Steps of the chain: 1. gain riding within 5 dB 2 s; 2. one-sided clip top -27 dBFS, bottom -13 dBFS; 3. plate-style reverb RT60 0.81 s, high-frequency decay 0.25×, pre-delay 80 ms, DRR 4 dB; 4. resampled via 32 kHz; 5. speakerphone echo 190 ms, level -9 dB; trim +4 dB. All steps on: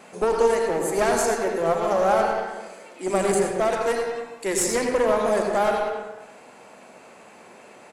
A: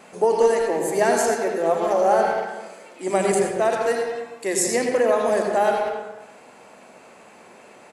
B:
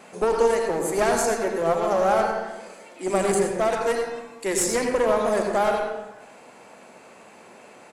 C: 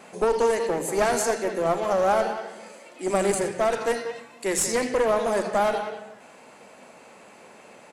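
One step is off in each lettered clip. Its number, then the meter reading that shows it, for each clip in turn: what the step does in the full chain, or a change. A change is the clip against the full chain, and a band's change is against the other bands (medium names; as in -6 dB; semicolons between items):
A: 2, distortion -10 dB; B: 5, momentary loudness spread change -2 LU; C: 3, loudness change -1.5 LU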